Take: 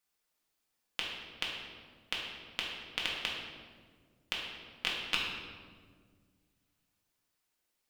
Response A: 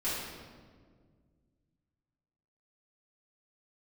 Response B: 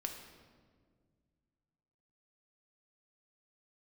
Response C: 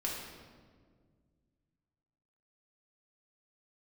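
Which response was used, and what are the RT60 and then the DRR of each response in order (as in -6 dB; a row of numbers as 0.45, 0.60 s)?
C; 1.8, 1.8, 1.8 s; -12.0, 3.0, -4.0 dB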